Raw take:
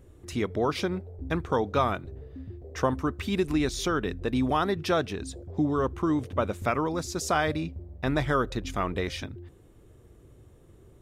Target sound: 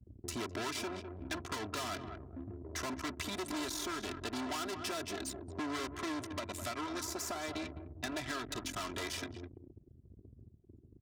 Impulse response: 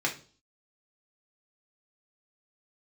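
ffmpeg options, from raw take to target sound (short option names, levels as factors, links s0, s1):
-filter_complex "[0:a]aeval=exprs='max(val(0),0)':c=same,asplit=3[s0][s1][s2];[s0]afade=t=out:st=6.24:d=0.02[s3];[s1]acompressor=threshold=0.0316:ratio=6,afade=t=in:st=6.24:d=0.02,afade=t=out:st=8.51:d=0.02[s4];[s2]afade=t=in:st=8.51:d=0.02[s5];[s3][s4][s5]amix=inputs=3:normalize=0,asoftclip=type=hard:threshold=0.0398,bass=f=250:g=9,treble=f=4000:g=13,aecho=1:1:3:0.79,asplit=2[s6][s7];[s7]adelay=205,lowpass=f=2600:p=1,volume=0.266,asplit=2[s8][s9];[s9]adelay=205,lowpass=f=2600:p=1,volume=0.37,asplit=2[s10][s11];[s11]adelay=205,lowpass=f=2600:p=1,volume=0.37,asplit=2[s12][s13];[s13]adelay=205,lowpass=f=2600:p=1,volume=0.37[s14];[s6][s8][s10][s12][s14]amix=inputs=5:normalize=0,anlmdn=0.158,highshelf=f=7900:g=-7.5,acrossover=split=680|1900[s15][s16][s17];[s15]acompressor=threshold=0.02:ratio=4[s18];[s16]acompressor=threshold=0.00708:ratio=4[s19];[s17]acompressor=threshold=0.00631:ratio=4[s20];[s18][s19][s20]amix=inputs=3:normalize=0,highpass=130,volume=1.26"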